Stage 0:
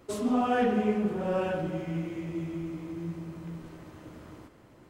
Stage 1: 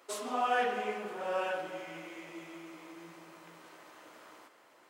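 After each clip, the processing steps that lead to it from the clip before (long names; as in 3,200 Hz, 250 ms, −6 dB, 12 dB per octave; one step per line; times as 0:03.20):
high-pass filter 720 Hz 12 dB per octave
level +1.5 dB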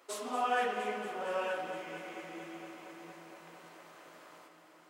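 delay that swaps between a low-pass and a high-pass 116 ms, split 1,300 Hz, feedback 89%, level −11.5 dB
level −1.5 dB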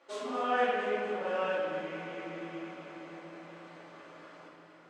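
high-frequency loss of the air 110 metres
rectangular room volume 480 cubic metres, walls mixed, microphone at 2.4 metres
level −2.5 dB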